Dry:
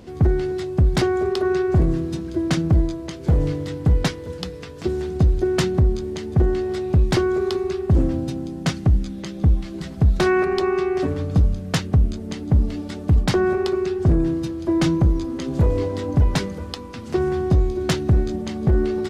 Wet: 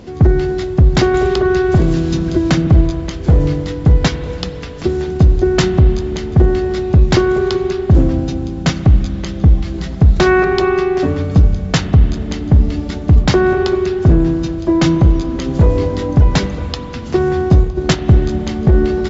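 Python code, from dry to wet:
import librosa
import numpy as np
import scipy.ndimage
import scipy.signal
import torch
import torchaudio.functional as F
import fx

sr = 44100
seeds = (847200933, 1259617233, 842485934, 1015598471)

y = fx.transient(x, sr, attack_db=1, sustain_db=-11, at=(17.45, 18.22))
y = fx.brickwall_lowpass(y, sr, high_hz=7600.0)
y = fx.rev_spring(y, sr, rt60_s=3.1, pass_ms=(37, 47), chirp_ms=60, drr_db=11.0)
y = fx.band_squash(y, sr, depth_pct=70, at=(1.14, 2.67))
y = y * librosa.db_to_amplitude(7.0)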